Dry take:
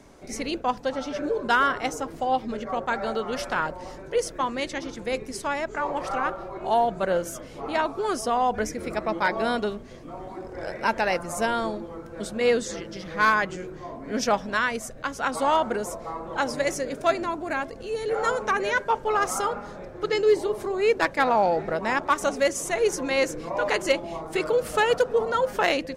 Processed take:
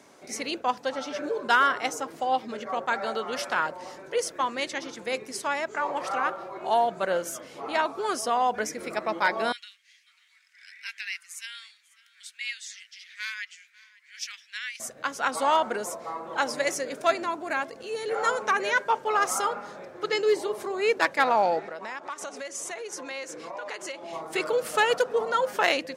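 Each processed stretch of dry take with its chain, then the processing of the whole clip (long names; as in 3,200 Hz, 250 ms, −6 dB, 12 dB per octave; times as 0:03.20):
0:09.52–0:14.80: Butterworth high-pass 2,000 Hz + high-shelf EQ 3,600 Hz −8 dB + single-tap delay 545 ms −22 dB
0:21.59–0:24.13: low-pass filter 9,700 Hz + low-shelf EQ 190 Hz −9 dB + downward compressor, threshold −32 dBFS
whole clip: high-pass filter 160 Hz 12 dB per octave; low-shelf EQ 500 Hz −8.5 dB; level +1.5 dB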